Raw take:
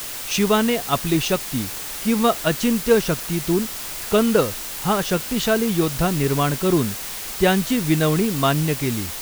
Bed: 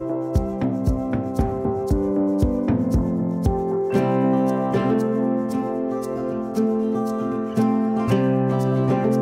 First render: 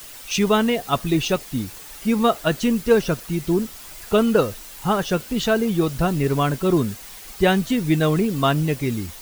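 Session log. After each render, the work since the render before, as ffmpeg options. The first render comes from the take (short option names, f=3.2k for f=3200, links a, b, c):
-af "afftdn=nr=10:nf=-31"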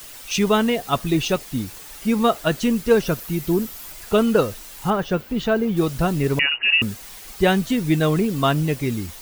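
-filter_complex "[0:a]asettb=1/sr,asplit=3[a][b][c];[a]atrim=end=3.064[d];[b]atrim=start=3.06:end=3.92,asetpts=PTS-STARTPTS,afade=t=in:d=0.004:c=qsin,afade=t=out:st=0.856:d=0.004:c=qsin,equalizer=f=14k:w=2.1:g=9.5[e];[c]atrim=start=3.916[f];[d][e]acrossfade=d=0.004:c1=hsin:c2=qsin[g];[g][f]acrossfade=d=0.004:c1=qsin:c2=hsin,asettb=1/sr,asplit=3[h][i][j];[h]atrim=end=4.904[k];[i]atrim=start=4.9:end=5.77,asetpts=PTS-STARTPTS,afade=t=in:d=0.004:c=qsin,afade=t=out:st=0.866:d=0.004:c=qsin,equalizer=f=8.5k:w=0.43:g=-11.5[l];[j]atrim=start=5.766[m];[k][l]acrossfade=d=0.004:c1=hsin:c2=qsin[n];[n][m]acrossfade=d=0.004:c1=qsin:c2=hsin,asettb=1/sr,asplit=3[o][p][q];[o]atrim=end=6.394[r];[p]atrim=start=6.39:end=6.82,asetpts=PTS-STARTPTS,afade=t=in:d=0.004:c=qsin,afade=t=out:st=0.426:d=0.004:c=qsin,lowpass=f=2.6k:t=q:w=0.5098,lowpass=f=2.6k:t=q:w=0.6013,lowpass=f=2.6k:t=q:w=0.9,lowpass=f=2.6k:t=q:w=2.563,afreqshift=-3000[s];[q]atrim=start=6.816[t];[r][s]acrossfade=d=0.004:c1=hsin:c2=qsin[u];[u][t]acrossfade=d=0.004:c1=qsin:c2=hsin"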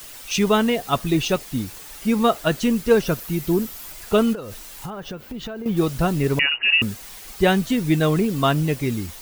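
-filter_complex "[0:a]asettb=1/sr,asplit=3[a][b][c];[a]atrim=end=4.334[d];[b]atrim=start=4.33:end=5.66,asetpts=PTS-STARTPTS,afade=t=in:d=0.004:c=qsin,afade=t=out:st=1.326:d=0.004:c=qsin,acompressor=threshold=-28dB:ratio=12:attack=3.2:release=140:knee=1:detection=peak[e];[c]atrim=start=5.656[f];[d][e]acrossfade=d=0.004:c1=hsin:c2=qsin[g];[g][f]acrossfade=d=0.004:c1=qsin:c2=hsin"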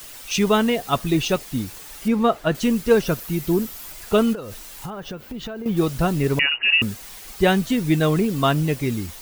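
-filter_complex "[0:a]asettb=1/sr,asplit=3[a][b][c];[a]atrim=end=2.084[d];[b]atrim=start=2.08:end=2.55,asetpts=PTS-STARTPTS,afade=t=in:d=0.004:c=qsin,afade=t=out:st=0.466:d=0.004:c=qsin,highshelf=f=4k:g=-12[e];[c]atrim=start=2.546[f];[d][e]acrossfade=d=0.004:c1=hsin:c2=qsin[g];[g][f]acrossfade=d=0.004:c1=qsin:c2=hsin"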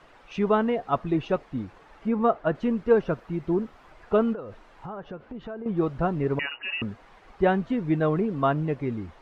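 -af "lowpass=1.2k,lowshelf=f=360:g=-8"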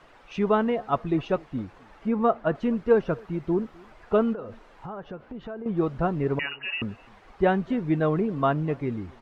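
-filter_complex "[0:a]asplit=2[a][b];[b]adelay=256.6,volume=-26dB,highshelf=f=4k:g=-5.77[c];[a][c]amix=inputs=2:normalize=0"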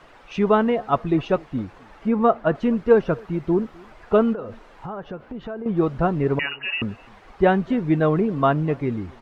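-af "volume=4.5dB"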